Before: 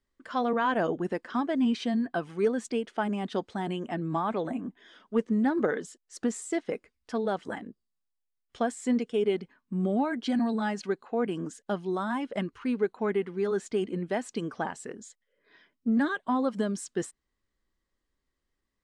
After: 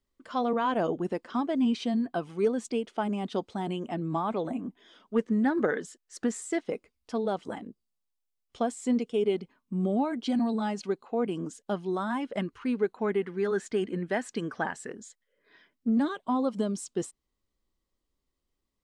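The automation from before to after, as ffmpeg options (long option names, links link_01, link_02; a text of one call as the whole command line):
ffmpeg -i in.wav -af "asetnsamples=nb_out_samples=441:pad=0,asendcmd='5.16 equalizer g 2.5;6.61 equalizer g -8.5;11.72 equalizer g -1;13.23 equalizer g 6;14.89 equalizer g 0;15.89 equalizer g -11',equalizer=frequency=1700:width_type=o:width=0.51:gain=-7.5" out.wav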